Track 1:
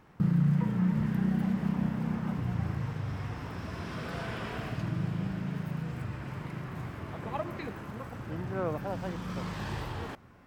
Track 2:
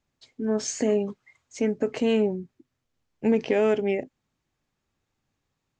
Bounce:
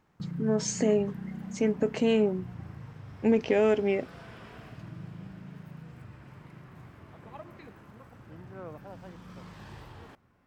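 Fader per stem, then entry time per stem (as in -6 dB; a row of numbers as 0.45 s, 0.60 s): -10.5 dB, -1.5 dB; 0.00 s, 0.00 s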